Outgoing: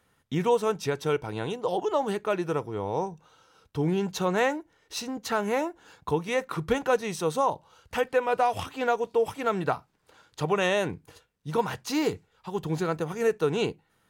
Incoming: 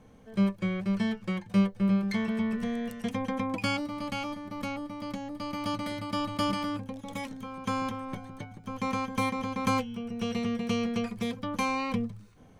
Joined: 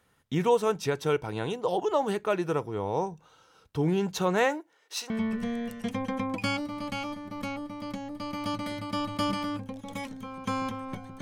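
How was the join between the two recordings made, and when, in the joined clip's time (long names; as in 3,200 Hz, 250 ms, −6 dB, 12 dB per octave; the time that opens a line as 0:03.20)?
outgoing
0:04.44–0:05.10: high-pass filter 220 Hz → 760 Hz
0:05.10: continue with incoming from 0:02.30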